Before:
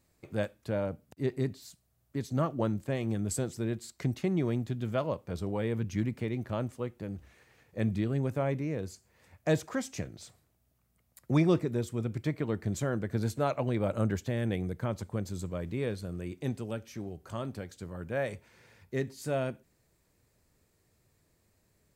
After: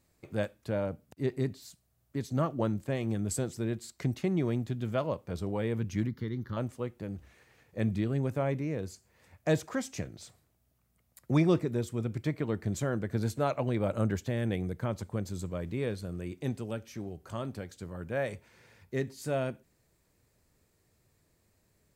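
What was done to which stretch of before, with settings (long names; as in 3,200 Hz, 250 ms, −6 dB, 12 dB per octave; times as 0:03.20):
0:06.07–0:06.57: phaser with its sweep stopped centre 2,500 Hz, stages 6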